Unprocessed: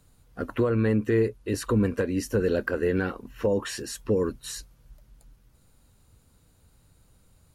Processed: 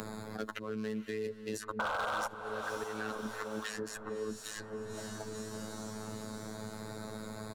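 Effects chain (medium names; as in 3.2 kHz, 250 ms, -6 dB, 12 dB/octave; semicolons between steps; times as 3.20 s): local Wiener filter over 15 samples; bass shelf 110 Hz -10.5 dB; comb 4.5 ms, depth 51%; slow attack 500 ms; reverse; compression 6:1, threshold -46 dBFS, peak gain reduction 25 dB; reverse; robot voice 108 Hz; painted sound noise, 1.79–2.28 s, 470–1600 Hz -35 dBFS; hard clipper -31 dBFS, distortion -16 dB; on a send: echo that smears into a reverb 512 ms, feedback 43%, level -14 dB; on the sum: three bands compressed up and down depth 100%; trim +9.5 dB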